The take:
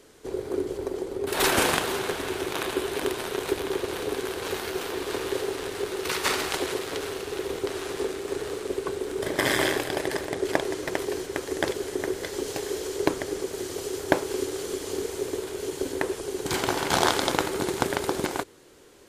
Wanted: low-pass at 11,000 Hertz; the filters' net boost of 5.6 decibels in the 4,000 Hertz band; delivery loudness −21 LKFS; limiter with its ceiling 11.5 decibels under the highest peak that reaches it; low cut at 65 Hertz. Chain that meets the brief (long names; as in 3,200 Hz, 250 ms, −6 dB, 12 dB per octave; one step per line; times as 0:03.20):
high-pass filter 65 Hz
low-pass filter 11,000 Hz
parametric band 4,000 Hz +7 dB
level +8 dB
brickwall limiter −5.5 dBFS